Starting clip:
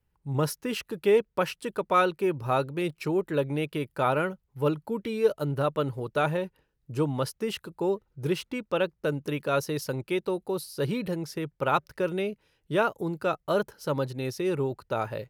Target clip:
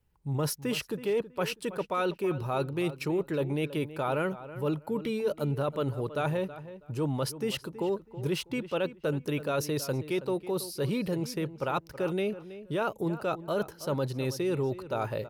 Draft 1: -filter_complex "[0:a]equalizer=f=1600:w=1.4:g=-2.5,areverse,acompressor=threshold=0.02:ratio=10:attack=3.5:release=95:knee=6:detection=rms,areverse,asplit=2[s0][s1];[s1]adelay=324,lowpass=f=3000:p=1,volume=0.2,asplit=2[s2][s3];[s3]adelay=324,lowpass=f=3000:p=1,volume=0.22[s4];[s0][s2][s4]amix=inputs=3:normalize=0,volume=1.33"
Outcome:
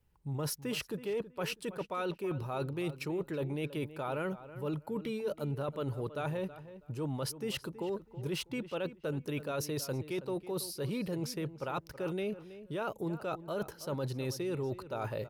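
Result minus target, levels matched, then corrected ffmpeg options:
compression: peak gain reduction +6.5 dB
-filter_complex "[0:a]equalizer=f=1600:w=1.4:g=-2.5,areverse,acompressor=threshold=0.0473:ratio=10:attack=3.5:release=95:knee=6:detection=rms,areverse,asplit=2[s0][s1];[s1]adelay=324,lowpass=f=3000:p=1,volume=0.2,asplit=2[s2][s3];[s3]adelay=324,lowpass=f=3000:p=1,volume=0.22[s4];[s0][s2][s4]amix=inputs=3:normalize=0,volume=1.33"

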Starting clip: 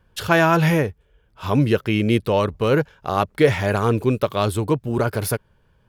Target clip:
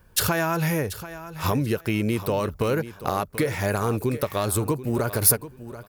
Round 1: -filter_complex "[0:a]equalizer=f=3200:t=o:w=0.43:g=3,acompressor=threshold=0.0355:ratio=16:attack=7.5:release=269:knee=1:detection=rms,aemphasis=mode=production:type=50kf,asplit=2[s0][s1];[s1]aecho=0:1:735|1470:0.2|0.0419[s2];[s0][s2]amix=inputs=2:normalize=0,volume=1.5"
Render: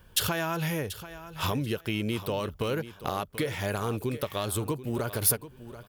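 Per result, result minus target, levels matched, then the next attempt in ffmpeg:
compression: peak gain reduction +6 dB; 4 kHz band +5.0 dB
-filter_complex "[0:a]equalizer=f=3200:t=o:w=0.43:g=3,acompressor=threshold=0.075:ratio=16:attack=7.5:release=269:knee=1:detection=rms,aemphasis=mode=production:type=50kf,asplit=2[s0][s1];[s1]aecho=0:1:735|1470:0.2|0.0419[s2];[s0][s2]amix=inputs=2:normalize=0,volume=1.5"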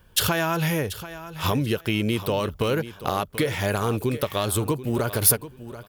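4 kHz band +4.5 dB
-filter_complex "[0:a]equalizer=f=3200:t=o:w=0.43:g=-7,acompressor=threshold=0.075:ratio=16:attack=7.5:release=269:knee=1:detection=rms,aemphasis=mode=production:type=50kf,asplit=2[s0][s1];[s1]aecho=0:1:735|1470:0.2|0.0419[s2];[s0][s2]amix=inputs=2:normalize=0,volume=1.5"

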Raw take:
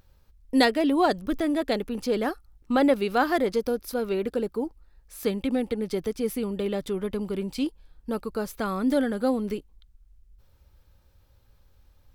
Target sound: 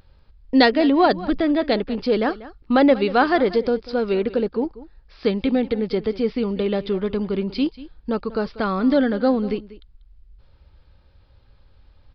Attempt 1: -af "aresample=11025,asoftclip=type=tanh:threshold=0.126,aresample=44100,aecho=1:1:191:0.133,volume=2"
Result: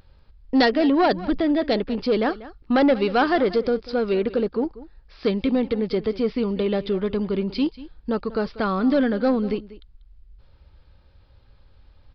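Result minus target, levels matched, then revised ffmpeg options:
saturation: distortion +16 dB
-af "aresample=11025,asoftclip=type=tanh:threshold=0.422,aresample=44100,aecho=1:1:191:0.133,volume=2"

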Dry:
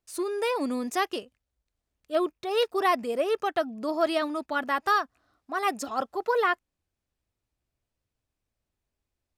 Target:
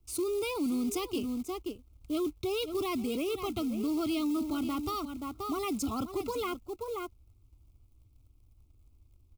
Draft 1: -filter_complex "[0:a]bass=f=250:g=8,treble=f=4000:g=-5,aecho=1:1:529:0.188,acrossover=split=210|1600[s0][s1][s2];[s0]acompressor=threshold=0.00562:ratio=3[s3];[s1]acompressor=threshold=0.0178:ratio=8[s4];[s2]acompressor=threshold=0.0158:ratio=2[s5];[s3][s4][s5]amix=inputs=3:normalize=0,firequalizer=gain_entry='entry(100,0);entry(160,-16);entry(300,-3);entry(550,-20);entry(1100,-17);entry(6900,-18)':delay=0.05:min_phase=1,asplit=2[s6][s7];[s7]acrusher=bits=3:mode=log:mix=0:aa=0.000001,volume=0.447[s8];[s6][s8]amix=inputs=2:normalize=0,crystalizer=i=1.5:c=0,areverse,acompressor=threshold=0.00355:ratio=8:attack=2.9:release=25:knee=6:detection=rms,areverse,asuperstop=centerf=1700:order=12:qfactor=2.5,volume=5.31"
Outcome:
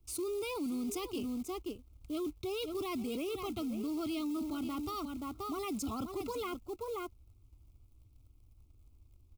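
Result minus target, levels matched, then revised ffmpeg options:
compression: peak gain reduction +5.5 dB
-filter_complex "[0:a]bass=f=250:g=8,treble=f=4000:g=-5,aecho=1:1:529:0.188,acrossover=split=210|1600[s0][s1][s2];[s0]acompressor=threshold=0.00562:ratio=3[s3];[s1]acompressor=threshold=0.0178:ratio=8[s4];[s2]acompressor=threshold=0.0158:ratio=2[s5];[s3][s4][s5]amix=inputs=3:normalize=0,firequalizer=gain_entry='entry(100,0);entry(160,-16);entry(300,-3);entry(550,-20);entry(1100,-17);entry(6900,-18)':delay=0.05:min_phase=1,asplit=2[s6][s7];[s7]acrusher=bits=3:mode=log:mix=0:aa=0.000001,volume=0.447[s8];[s6][s8]amix=inputs=2:normalize=0,crystalizer=i=1.5:c=0,areverse,acompressor=threshold=0.0075:ratio=8:attack=2.9:release=25:knee=6:detection=rms,areverse,asuperstop=centerf=1700:order=12:qfactor=2.5,volume=5.31"

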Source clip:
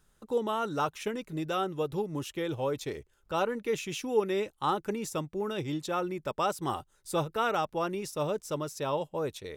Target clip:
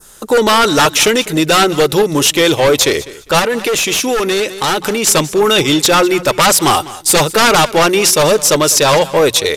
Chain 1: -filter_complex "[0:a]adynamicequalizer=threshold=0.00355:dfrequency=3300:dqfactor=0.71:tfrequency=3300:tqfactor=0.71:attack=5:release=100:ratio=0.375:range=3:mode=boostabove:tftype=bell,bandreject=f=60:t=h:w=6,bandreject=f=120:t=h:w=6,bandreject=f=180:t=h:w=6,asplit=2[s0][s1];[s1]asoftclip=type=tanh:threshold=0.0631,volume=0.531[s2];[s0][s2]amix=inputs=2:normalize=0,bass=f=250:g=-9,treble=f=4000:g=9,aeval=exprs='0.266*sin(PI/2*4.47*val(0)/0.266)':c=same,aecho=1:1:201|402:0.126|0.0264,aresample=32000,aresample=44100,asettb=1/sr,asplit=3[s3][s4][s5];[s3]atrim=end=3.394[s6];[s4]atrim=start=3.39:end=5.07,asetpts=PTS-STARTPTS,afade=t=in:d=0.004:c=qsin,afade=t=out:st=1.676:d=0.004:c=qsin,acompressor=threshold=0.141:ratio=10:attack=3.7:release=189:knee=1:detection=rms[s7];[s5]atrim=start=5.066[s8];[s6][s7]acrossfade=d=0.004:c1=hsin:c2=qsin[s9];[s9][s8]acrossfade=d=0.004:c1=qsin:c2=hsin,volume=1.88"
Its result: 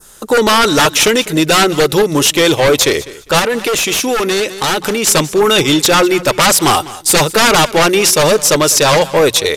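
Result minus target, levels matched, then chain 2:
saturation: distortion -9 dB
-filter_complex "[0:a]adynamicequalizer=threshold=0.00355:dfrequency=3300:dqfactor=0.71:tfrequency=3300:tqfactor=0.71:attack=5:release=100:ratio=0.375:range=3:mode=boostabove:tftype=bell,bandreject=f=60:t=h:w=6,bandreject=f=120:t=h:w=6,bandreject=f=180:t=h:w=6,asplit=2[s0][s1];[s1]asoftclip=type=tanh:threshold=0.0178,volume=0.531[s2];[s0][s2]amix=inputs=2:normalize=0,bass=f=250:g=-9,treble=f=4000:g=9,aeval=exprs='0.266*sin(PI/2*4.47*val(0)/0.266)':c=same,aecho=1:1:201|402:0.126|0.0264,aresample=32000,aresample=44100,asettb=1/sr,asplit=3[s3][s4][s5];[s3]atrim=end=3.394[s6];[s4]atrim=start=3.39:end=5.07,asetpts=PTS-STARTPTS,afade=t=in:d=0.004:c=qsin,afade=t=out:st=1.676:d=0.004:c=qsin,acompressor=threshold=0.141:ratio=10:attack=3.7:release=189:knee=1:detection=rms[s7];[s5]atrim=start=5.066[s8];[s6][s7]acrossfade=d=0.004:c1=hsin:c2=qsin[s9];[s9][s8]acrossfade=d=0.004:c1=qsin:c2=hsin,volume=1.88"

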